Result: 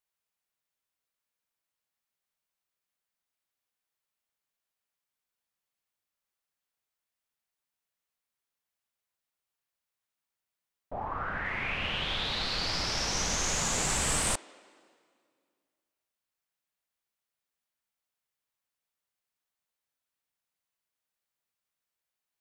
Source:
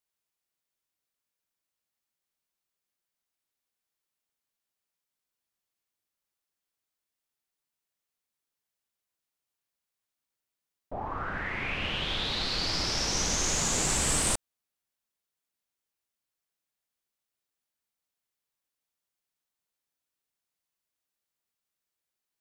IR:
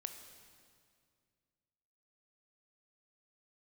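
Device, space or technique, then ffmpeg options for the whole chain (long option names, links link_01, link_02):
filtered reverb send: -filter_complex "[0:a]asettb=1/sr,asplit=3[link_01][link_02][link_03];[link_01]atrim=end=11.054[link_04];[link_02]atrim=start=11.05:end=11.45,asetpts=PTS-STARTPTS,afade=type=in:duration=0.004:curve=qsin,afade=type=out:start_time=0.396:duration=0.004:curve=qsin,highshelf=frequency=7700:gain=-9[link_05];[link_03]atrim=start=11.446[link_06];[link_04][link_05]acrossfade=duration=0.004:curve1=hsin:curve2=qsin[link_07];[link_07][link_06]acrossfade=duration=0.004:curve1=qsin:curve2=hsin,asplit=2[link_08][link_09];[link_09]highpass=frequency=310:width=0.5412,highpass=frequency=310:width=1.3066,lowpass=3600[link_10];[1:a]atrim=start_sample=2205[link_11];[link_10][link_11]afir=irnorm=-1:irlink=0,volume=-5dB[link_12];[link_08][link_12]amix=inputs=2:normalize=0,volume=-2dB"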